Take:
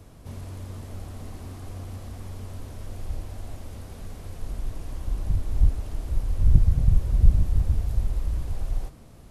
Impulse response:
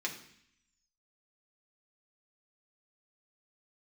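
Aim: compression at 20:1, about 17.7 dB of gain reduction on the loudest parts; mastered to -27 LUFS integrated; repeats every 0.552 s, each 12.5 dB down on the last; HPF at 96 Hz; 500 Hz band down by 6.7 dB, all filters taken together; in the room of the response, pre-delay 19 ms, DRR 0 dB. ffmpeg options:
-filter_complex "[0:a]highpass=96,equalizer=f=500:t=o:g=-9,acompressor=threshold=-36dB:ratio=20,aecho=1:1:552|1104|1656:0.237|0.0569|0.0137,asplit=2[a][b];[1:a]atrim=start_sample=2205,adelay=19[c];[b][c]afir=irnorm=-1:irlink=0,volume=-3.5dB[d];[a][d]amix=inputs=2:normalize=0,volume=15.5dB"

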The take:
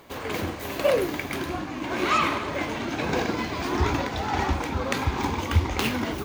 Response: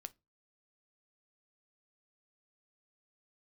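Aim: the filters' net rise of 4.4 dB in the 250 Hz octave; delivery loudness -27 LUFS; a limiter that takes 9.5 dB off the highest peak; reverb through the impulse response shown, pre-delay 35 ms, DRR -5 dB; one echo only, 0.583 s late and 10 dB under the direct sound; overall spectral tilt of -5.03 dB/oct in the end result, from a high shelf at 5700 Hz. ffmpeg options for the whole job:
-filter_complex "[0:a]equalizer=f=250:t=o:g=5.5,highshelf=f=5.7k:g=-6.5,alimiter=limit=-15dB:level=0:latency=1,aecho=1:1:583:0.316,asplit=2[a][b];[1:a]atrim=start_sample=2205,adelay=35[c];[b][c]afir=irnorm=-1:irlink=0,volume=10.5dB[d];[a][d]amix=inputs=2:normalize=0,volume=-7.5dB"

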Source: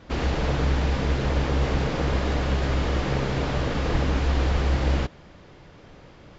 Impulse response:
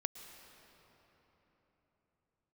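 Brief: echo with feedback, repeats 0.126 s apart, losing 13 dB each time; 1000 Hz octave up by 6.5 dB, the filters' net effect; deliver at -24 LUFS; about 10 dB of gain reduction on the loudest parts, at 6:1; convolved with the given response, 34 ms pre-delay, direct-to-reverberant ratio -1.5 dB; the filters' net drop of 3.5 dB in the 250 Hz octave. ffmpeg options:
-filter_complex "[0:a]equalizer=f=250:t=o:g=-5.5,equalizer=f=1k:t=o:g=8.5,acompressor=threshold=-29dB:ratio=6,aecho=1:1:126|252|378:0.224|0.0493|0.0108,asplit=2[a][b];[1:a]atrim=start_sample=2205,adelay=34[c];[b][c]afir=irnorm=-1:irlink=0,volume=2dB[d];[a][d]amix=inputs=2:normalize=0,volume=6dB"

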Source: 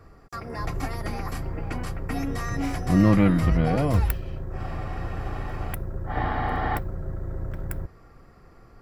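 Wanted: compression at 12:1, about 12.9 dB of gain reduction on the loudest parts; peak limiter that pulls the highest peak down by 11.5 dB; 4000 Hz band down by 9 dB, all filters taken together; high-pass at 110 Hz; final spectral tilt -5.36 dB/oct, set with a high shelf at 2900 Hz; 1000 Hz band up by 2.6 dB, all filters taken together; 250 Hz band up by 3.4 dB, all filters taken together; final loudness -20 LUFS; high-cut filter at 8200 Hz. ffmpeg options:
-af "highpass=110,lowpass=8.2k,equalizer=f=250:t=o:g=5,equalizer=f=1k:t=o:g=4.5,highshelf=f=2.9k:g=-9,equalizer=f=4k:t=o:g=-5,acompressor=threshold=-24dB:ratio=12,volume=15dB,alimiter=limit=-10.5dB:level=0:latency=1"

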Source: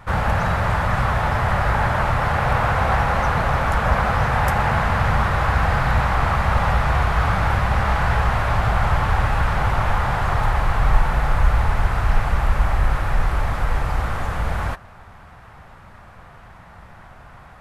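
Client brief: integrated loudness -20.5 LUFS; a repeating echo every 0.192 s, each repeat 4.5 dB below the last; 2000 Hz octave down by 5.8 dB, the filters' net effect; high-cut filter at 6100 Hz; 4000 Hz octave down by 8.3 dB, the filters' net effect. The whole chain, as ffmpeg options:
-af "lowpass=6.1k,equalizer=f=2k:t=o:g=-6.5,equalizer=f=4k:t=o:g=-8,aecho=1:1:192|384|576|768|960|1152|1344|1536|1728:0.596|0.357|0.214|0.129|0.0772|0.0463|0.0278|0.0167|0.01,volume=-0.5dB"

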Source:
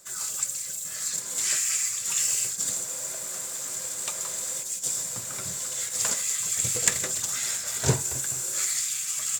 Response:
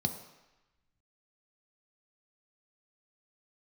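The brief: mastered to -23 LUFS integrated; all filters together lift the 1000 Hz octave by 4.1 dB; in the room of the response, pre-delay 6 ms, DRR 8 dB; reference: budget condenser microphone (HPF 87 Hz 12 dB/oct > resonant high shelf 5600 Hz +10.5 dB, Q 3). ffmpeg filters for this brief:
-filter_complex "[0:a]equalizer=f=1k:t=o:g=5.5,asplit=2[a][b];[1:a]atrim=start_sample=2205,adelay=6[c];[b][c]afir=irnorm=-1:irlink=0,volume=-12dB[d];[a][d]amix=inputs=2:normalize=0,highpass=87,highshelf=f=5.6k:t=q:w=3:g=10.5,volume=-13dB"

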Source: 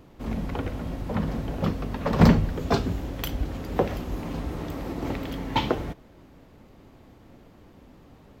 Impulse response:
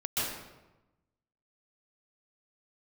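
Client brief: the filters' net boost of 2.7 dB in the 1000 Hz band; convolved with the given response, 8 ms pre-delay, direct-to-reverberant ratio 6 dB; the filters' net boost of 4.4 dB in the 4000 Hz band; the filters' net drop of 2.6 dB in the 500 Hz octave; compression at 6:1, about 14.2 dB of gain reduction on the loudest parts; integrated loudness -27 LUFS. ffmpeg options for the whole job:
-filter_complex "[0:a]equalizer=f=500:t=o:g=-4.5,equalizer=f=1k:t=o:g=4.5,equalizer=f=4k:t=o:g=5.5,acompressor=threshold=-27dB:ratio=6,asplit=2[a][b];[1:a]atrim=start_sample=2205,adelay=8[c];[b][c]afir=irnorm=-1:irlink=0,volume=-13.5dB[d];[a][d]amix=inputs=2:normalize=0,volume=5.5dB"

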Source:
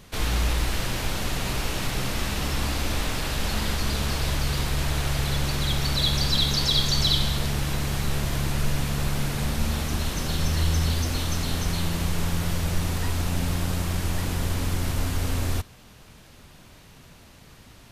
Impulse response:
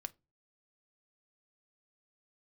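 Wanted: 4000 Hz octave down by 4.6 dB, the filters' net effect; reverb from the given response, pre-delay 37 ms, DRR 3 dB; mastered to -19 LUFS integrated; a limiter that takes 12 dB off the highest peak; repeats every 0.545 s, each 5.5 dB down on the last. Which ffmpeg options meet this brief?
-filter_complex "[0:a]equalizer=f=4k:t=o:g=-5.5,alimiter=limit=-22.5dB:level=0:latency=1,aecho=1:1:545|1090|1635|2180|2725|3270|3815:0.531|0.281|0.149|0.079|0.0419|0.0222|0.0118,asplit=2[a][b];[1:a]atrim=start_sample=2205,adelay=37[c];[b][c]afir=irnorm=-1:irlink=0,volume=0dB[d];[a][d]amix=inputs=2:normalize=0,volume=10.5dB"

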